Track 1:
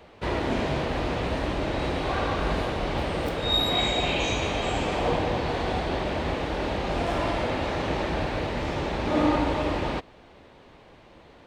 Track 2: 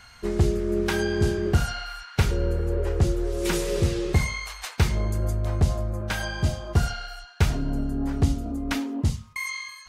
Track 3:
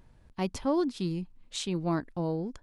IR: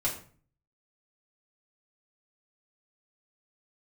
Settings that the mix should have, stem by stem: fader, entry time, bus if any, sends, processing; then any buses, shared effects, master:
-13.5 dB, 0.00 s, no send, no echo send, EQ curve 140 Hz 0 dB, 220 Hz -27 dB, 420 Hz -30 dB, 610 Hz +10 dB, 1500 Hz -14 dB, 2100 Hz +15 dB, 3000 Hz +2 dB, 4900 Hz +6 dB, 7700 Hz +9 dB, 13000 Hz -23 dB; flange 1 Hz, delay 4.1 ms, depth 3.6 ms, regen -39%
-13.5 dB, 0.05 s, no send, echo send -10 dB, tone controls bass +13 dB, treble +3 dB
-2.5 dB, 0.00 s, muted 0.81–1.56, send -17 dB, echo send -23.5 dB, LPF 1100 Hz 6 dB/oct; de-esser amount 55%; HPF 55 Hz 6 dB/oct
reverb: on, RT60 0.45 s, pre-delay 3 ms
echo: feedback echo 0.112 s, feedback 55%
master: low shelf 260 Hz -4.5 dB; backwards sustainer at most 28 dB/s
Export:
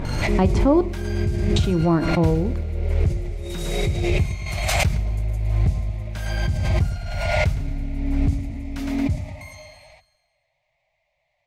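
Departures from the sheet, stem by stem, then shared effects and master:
stem 1 -13.5 dB -> -20.0 dB; stem 3 -2.5 dB -> +9.0 dB; master: missing low shelf 260 Hz -4.5 dB

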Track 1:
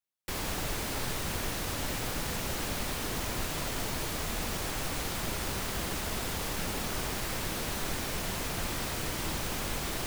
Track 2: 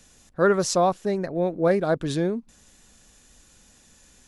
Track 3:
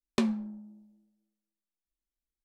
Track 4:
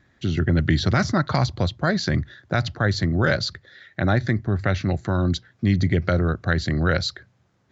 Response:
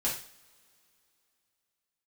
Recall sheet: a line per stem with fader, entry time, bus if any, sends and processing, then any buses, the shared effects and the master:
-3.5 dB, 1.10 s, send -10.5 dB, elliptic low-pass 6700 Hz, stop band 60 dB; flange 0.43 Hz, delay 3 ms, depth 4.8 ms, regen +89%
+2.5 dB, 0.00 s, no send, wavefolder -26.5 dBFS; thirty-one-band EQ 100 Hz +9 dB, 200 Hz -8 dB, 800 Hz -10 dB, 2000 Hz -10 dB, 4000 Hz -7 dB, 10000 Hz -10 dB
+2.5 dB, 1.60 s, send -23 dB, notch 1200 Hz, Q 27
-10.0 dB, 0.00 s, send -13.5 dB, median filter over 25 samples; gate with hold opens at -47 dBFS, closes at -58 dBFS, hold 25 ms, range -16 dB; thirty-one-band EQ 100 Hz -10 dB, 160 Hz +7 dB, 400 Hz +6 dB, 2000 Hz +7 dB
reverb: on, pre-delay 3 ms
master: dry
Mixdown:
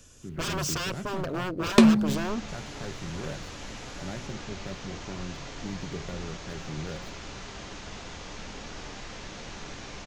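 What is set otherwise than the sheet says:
stem 1: entry 1.10 s -> 1.80 s; stem 3 +2.5 dB -> +10.5 dB; stem 4 -10.0 dB -> -19.0 dB

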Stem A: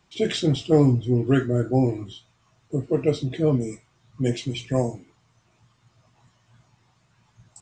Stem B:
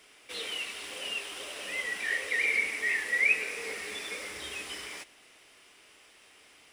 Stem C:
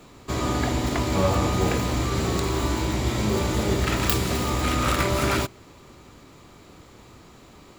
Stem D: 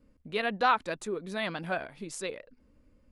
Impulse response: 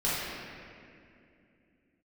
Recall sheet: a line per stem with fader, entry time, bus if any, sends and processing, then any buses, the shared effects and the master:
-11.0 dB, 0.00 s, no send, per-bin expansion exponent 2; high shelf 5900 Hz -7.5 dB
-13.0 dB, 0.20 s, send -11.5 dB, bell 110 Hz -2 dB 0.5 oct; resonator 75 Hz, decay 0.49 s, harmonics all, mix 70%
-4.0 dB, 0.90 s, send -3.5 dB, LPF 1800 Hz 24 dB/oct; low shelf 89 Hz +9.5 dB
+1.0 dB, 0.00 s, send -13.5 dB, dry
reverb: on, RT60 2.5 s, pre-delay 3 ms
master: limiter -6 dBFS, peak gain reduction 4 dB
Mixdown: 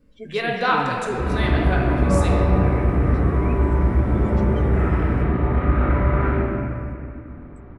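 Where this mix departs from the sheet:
stem B: send off; stem C -4.0 dB -> -13.0 dB; reverb return +6.5 dB

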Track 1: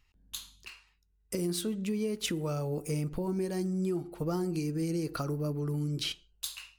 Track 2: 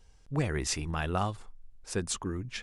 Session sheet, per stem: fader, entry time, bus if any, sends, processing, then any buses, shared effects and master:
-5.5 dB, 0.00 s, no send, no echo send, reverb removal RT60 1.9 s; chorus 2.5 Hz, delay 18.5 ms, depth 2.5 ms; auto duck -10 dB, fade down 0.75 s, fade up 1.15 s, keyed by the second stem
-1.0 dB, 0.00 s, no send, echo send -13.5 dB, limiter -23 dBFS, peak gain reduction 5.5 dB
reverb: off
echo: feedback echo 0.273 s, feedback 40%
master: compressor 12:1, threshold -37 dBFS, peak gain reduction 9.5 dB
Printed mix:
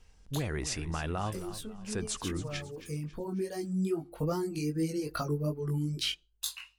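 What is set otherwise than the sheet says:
stem 1 -5.5 dB -> +5.5 dB; master: missing compressor 12:1, threshold -37 dBFS, peak gain reduction 9.5 dB

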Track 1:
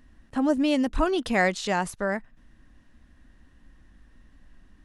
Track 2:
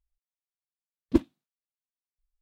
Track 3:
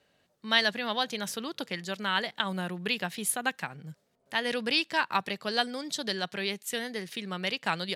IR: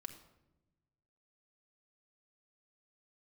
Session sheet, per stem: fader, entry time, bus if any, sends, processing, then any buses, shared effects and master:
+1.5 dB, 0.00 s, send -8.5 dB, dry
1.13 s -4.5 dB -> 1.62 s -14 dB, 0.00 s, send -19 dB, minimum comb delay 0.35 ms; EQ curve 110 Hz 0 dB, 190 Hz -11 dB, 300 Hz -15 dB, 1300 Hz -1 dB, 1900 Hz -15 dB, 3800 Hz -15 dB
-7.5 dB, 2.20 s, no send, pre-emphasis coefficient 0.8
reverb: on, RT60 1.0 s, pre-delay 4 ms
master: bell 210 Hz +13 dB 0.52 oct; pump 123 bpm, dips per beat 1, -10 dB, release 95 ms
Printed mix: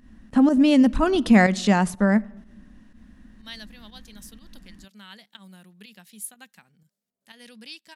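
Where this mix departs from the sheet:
stem 2 -4.5 dB -> -12.0 dB; stem 3: entry 2.20 s -> 2.95 s

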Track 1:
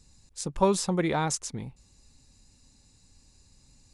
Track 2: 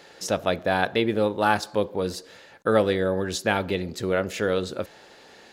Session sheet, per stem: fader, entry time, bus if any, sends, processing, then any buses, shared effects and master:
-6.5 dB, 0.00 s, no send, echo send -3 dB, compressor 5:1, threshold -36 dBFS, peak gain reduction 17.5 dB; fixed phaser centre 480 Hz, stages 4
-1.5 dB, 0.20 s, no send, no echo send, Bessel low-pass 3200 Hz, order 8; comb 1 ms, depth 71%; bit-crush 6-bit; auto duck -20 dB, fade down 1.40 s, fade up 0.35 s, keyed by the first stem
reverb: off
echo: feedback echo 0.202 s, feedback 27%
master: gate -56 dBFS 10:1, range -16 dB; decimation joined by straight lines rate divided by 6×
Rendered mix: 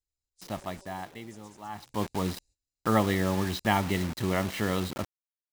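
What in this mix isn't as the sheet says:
stem 1 -6.5 dB -> -17.0 dB; master: missing decimation joined by straight lines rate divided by 6×

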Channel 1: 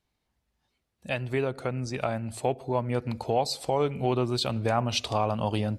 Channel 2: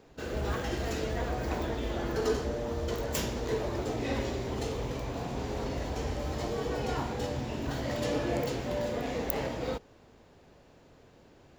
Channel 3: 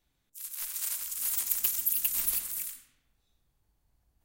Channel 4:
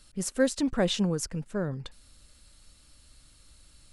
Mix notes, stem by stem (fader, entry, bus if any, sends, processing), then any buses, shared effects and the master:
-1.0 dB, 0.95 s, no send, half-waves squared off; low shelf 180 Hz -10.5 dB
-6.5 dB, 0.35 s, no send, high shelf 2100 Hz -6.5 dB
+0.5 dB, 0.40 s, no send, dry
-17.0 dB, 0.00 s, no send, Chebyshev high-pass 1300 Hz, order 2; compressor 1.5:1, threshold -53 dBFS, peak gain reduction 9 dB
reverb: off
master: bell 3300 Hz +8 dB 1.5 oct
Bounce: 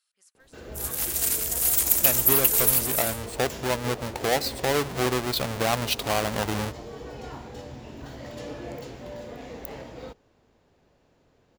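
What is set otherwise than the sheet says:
stem 2: missing high shelf 2100 Hz -6.5 dB; stem 3 +0.5 dB -> +8.5 dB; master: missing bell 3300 Hz +8 dB 1.5 oct

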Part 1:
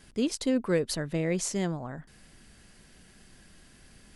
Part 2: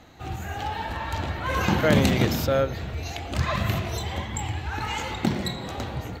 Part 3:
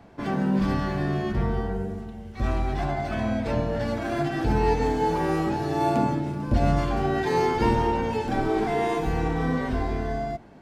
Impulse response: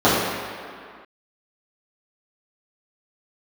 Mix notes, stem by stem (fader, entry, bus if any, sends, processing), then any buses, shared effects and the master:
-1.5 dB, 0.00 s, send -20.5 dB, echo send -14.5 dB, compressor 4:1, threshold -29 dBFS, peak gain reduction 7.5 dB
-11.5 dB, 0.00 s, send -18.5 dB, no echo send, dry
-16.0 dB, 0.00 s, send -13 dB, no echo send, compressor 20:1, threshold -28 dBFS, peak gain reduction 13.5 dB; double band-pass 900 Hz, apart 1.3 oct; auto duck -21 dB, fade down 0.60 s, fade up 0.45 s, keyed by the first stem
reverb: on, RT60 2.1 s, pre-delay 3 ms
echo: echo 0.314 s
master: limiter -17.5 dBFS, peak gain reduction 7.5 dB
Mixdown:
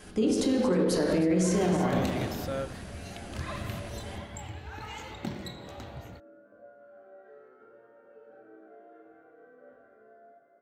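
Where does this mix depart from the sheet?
stem 1 -1.5 dB -> +4.5 dB; stem 2: send off; stem 3 -16.0 dB -> -24.5 dB

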